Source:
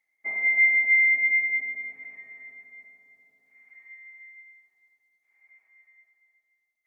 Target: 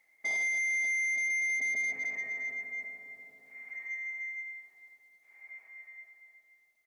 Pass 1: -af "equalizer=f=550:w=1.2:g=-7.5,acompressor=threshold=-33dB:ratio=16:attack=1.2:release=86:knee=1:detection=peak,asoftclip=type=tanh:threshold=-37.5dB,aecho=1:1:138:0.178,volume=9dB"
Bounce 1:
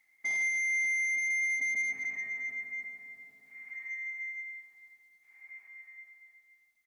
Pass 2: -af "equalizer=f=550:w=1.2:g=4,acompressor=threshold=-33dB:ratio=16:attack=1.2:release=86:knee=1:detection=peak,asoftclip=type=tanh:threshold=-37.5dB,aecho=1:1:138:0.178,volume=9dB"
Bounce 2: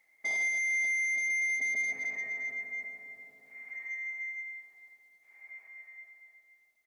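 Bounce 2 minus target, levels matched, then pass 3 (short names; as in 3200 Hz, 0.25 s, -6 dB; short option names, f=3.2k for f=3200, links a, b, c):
echo-to-direct +10 dB
-af "equalizer=f=550:w=1.2:g=4,acompressor=threshold=-33dB:ratio=16:attack=1.2:release=86:knee=1:detection=peak,asoftclip=type=tanh:threshold=-37.5dB,aecho=1:1:138:0.0562,volume=9dB"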